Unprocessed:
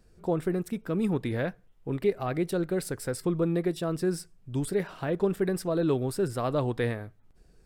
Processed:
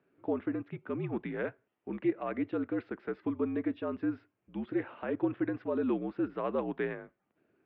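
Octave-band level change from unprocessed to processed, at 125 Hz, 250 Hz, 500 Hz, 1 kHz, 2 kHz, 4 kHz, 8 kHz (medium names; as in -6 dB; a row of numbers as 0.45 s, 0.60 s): -13.0 dB, -3.0 dB, -6.5 dB, -5.0 dB, -4.0 dB, under -10 dB, under -35 dB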